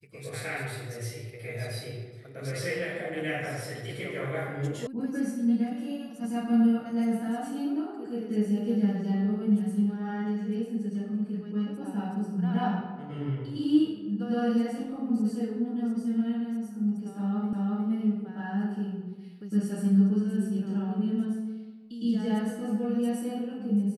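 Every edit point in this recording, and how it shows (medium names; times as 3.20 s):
4.87 s: sound stops dead
17.53 s: repeat of the last 0.36 s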